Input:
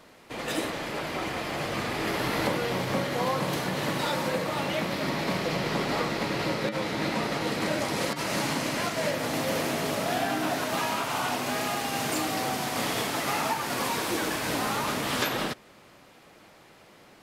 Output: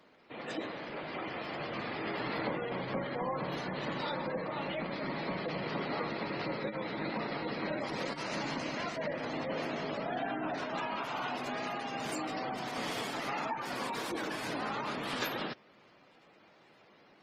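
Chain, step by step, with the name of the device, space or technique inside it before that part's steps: noise-suppressed video call (high-pass 130 Hz 12 dB/octave; spectral gate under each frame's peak -20 dB strong; trim -7 dB; Opus 20 kbps 48 kHz)

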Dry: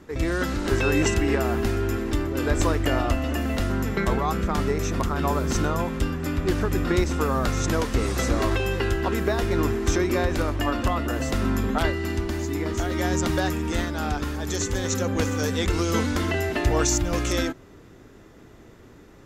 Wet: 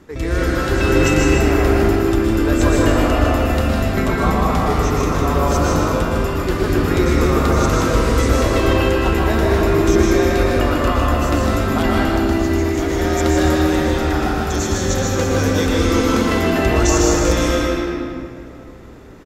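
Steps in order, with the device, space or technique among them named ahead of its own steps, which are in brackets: delay 155 ms -6 dB; stairwell (reverberation RT60 2.6 s, pre-delay 108 ms, DRR -4 dB); trim +1.5 dB

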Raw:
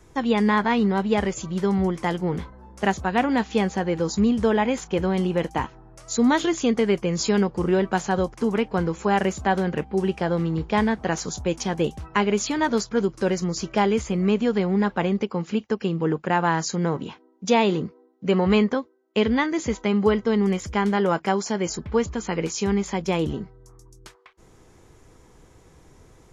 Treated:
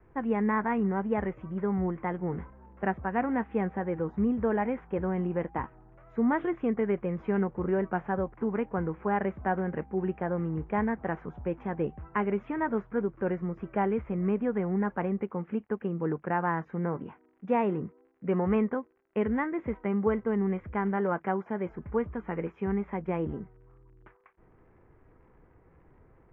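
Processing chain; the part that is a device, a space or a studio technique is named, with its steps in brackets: lo-fi chain (low-pass 3.6 kHz 12 dB/octave; wow and flutter; crackle 77 per s -42 dBFS); inverse Chebyshev low-pass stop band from 4.1 kHz, stop band 40 dB; trim -7 dB

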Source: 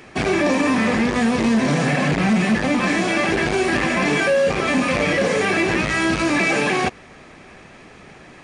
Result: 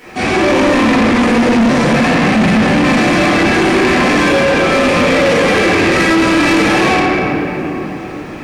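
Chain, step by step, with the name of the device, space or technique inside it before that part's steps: bass shelf 120 Hz -8.5 dB; simulated room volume 150 m³, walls hard, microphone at 1.9 m; open-reel tape (saturation -8 dBFS, distortion -9 dB; peaking EQ 78 Hz +3.5 dB 0.97 oct; white noise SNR 47 dB)

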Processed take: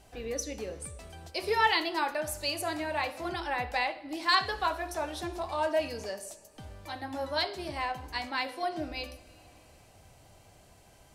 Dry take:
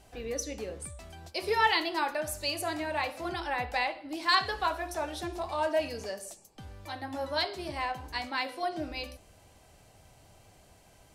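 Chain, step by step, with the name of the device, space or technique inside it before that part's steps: compressed reverb return (on a send at -8.5 dB: reverberation RT60 2.0 s, pre-delay 69 ms + compression 5:1, threshold -46 dBFS, peak gain reduction 20.5 dB)

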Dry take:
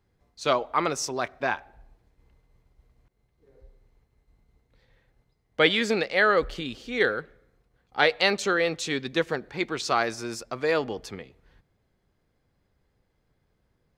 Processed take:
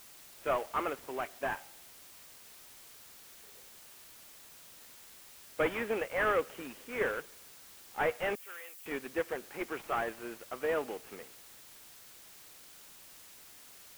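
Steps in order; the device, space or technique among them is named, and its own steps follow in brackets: army field radio (band-pass 310–3100 Hz; CVSD coder 16 kbps; white noise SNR 16 dB); 8.35–8.86 s: differentiator; trim -5.5 dB

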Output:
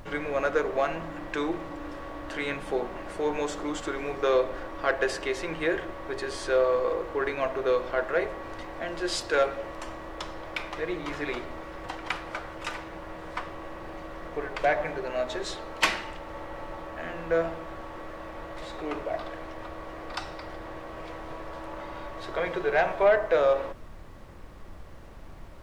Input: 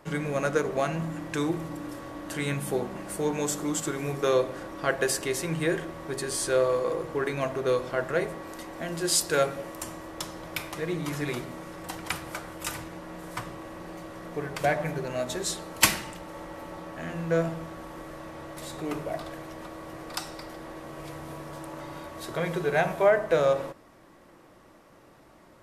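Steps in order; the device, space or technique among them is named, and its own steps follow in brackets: aircraft cabin announcement (band-pass 370–3500 Hz; saturation -14.5 dBFS, distortion -20 dB; brown noise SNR 13 dB); trim +2.5 dB

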